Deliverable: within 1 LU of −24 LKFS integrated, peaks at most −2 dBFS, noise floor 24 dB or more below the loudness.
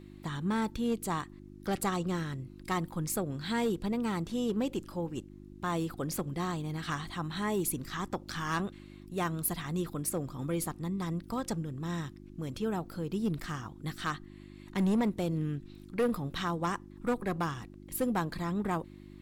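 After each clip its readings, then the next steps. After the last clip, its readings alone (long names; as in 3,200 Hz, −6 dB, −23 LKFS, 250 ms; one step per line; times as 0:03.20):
share of clipped samples 0.8%; peaks flattened at −23.5 dBFS; mains hum 50 Hz; hum harmonics up to 350 Hz; level of the hum −49 dBFS; integrated loudness −34.5 LKFS; sample peak −23.5 dBFS; target loudness −24.0 LKFS
→ clipped peaks rebuilt −23.5 dBFS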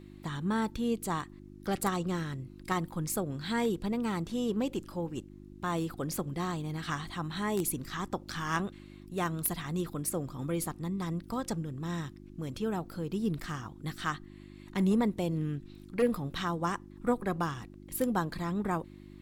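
share of clipped samples 0.0%; mains hum 50 Hz; hum harmonics up to 350 Hz; level of the hum −48 dBFS
→ hum removal 50 Hz, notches 7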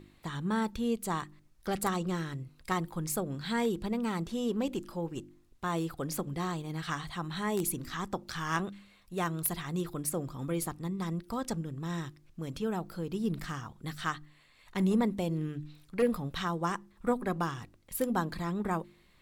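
mains hum none found; integrated loudness −34.0 LKFS; sample peak −14.5 dBFS; target loudness −24.0 LKFS
→ level +10 dB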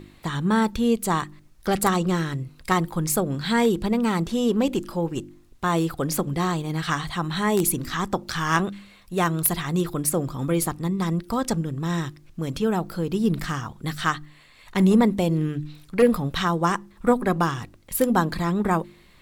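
integrated loudness −24.0 LKFS; sample peak −4.5 dBFS; background noise floor −53 dBFS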